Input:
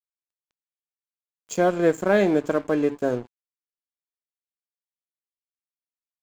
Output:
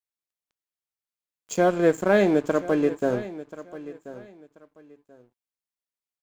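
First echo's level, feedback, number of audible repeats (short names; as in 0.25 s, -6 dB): -16.0 dB, 23%, 2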